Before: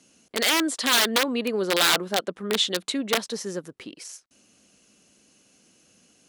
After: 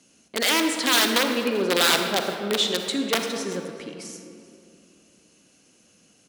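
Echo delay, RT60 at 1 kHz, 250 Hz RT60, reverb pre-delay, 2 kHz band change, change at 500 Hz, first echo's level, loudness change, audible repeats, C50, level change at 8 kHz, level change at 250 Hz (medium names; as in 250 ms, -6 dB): 389 ms, 2.3 s, 3.1 s, 40 ms, +1.0 dB, +2.0 dB, -21.5 dB, +1.0 dB, 1, 5.0 dB, +0.5 dB, +2.0 dB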